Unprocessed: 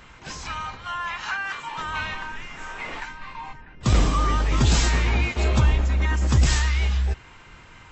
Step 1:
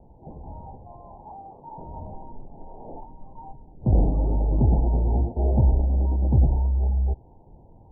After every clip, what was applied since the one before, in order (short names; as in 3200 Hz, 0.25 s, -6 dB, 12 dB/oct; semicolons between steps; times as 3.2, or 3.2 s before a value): steep low-pass 880 Hz 96 dB/oct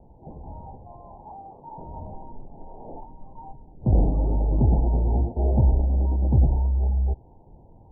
nothing audible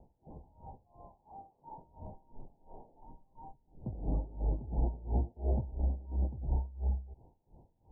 dB-linear tremolo 2.9 Hz, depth 21 dB; gain -6.5 dB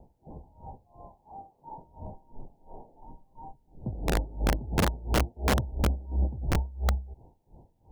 wrapped overs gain 24 dB; gain +5.5 dB